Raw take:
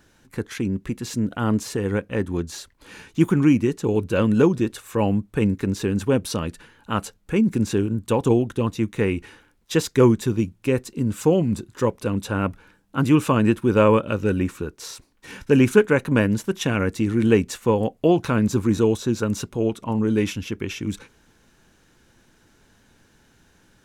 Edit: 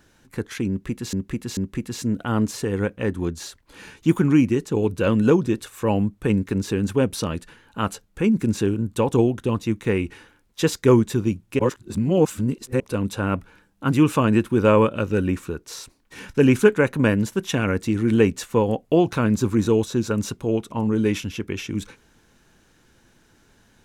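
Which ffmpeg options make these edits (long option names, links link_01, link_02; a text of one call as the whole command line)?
ffmpeg -i in.wav -filter_complex "[0:a]asplit=5[link_01][link_02][link_03][link_04][link_05];[link_01]atrim=end=1.132[link_06];[link_02]atrim=start=0.688:end=1.132[link_07];[link_03]atrim=start=0.688:end=10.712[link_08];[link_04]atrim=start=10.708:end=11.922,asetpts=PTS-STARTPTS,areverse[link_09];[link_05]atrim=start=11.918[link_10];[link_06][link_07]acrossfade=duration=0.004:curve1=hsin:curve2=hsin[link_11];[link_11][link_08]acrossfade=duration=0.004:curve1=hsin:curve2=hsin[link_12];[link_12][link_09]acrossfade=duration=0.004:curve1=hsin:curve2=hsin[link_13];[link_13][link_10]acrossfade=duration=0.004:curve1=hsin:curve2=hsin" out.wav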